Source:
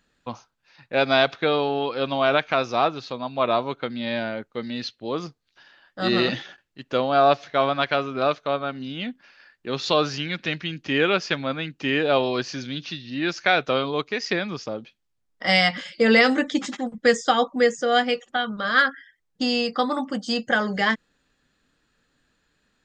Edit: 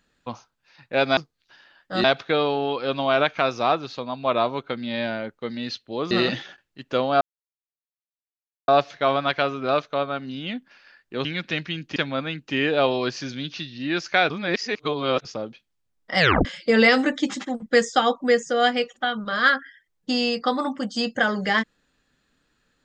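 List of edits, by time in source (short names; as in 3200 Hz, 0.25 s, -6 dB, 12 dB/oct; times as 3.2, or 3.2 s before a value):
5.24–6.11 move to 1.17
7.21 insert silence 1.47 s
9.78–10.2 cut
10.91–11.28 cut
13.62–14.57 reverse
15.51 tape stop 0.26 s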